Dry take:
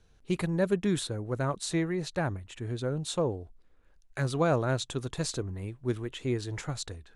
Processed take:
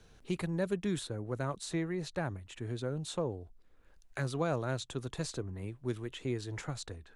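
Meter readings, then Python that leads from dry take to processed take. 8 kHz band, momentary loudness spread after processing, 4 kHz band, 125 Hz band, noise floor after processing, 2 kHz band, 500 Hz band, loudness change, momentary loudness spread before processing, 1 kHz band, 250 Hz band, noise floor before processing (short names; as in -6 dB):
-6.5 dB, 8 LU, -6.0 dB, -5.0 dB, -62 dBFS, -5.0 dB, -6.0 dB, -5.5 dB, 9 LU, -6.0 dB, -5.5 dB, -61 dBFS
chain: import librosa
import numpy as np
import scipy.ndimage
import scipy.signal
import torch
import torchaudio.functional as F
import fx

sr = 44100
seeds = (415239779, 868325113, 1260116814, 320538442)

y = fx.band_squash(x, sr, depth_pct=40)
y = F.gain(torch.from_numpy(y), -5.5).numpy()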